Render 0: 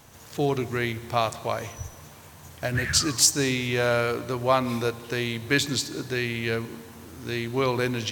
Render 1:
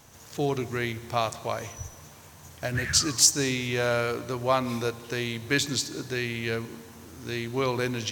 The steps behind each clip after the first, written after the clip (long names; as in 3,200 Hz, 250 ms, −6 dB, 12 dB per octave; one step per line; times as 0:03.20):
parametric band 6,100 Hz +4 dB 0.58 octaves
level −2.5 dB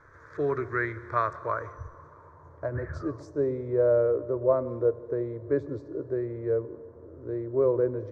low-pass filter sweep 1,600 Hz → 590 Hz, 0:01.16–0:03.47
phaser with its sweep stopped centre 770 Hz, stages 6
level +1 dB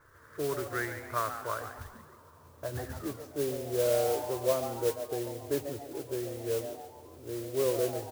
noise that follows the level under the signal 12 dB
on a send: echo with shifted repeats 140 ms, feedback 42%, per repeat +140 Hz, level −10 dB
on the sum: level −5.5 dB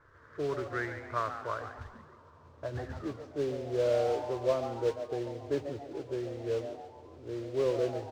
high-frequency loss of the air 150 metres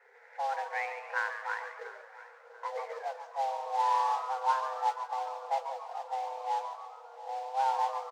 repeating echo 691 ms, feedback 39%, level −17 dB
frequency shifter +390 Hz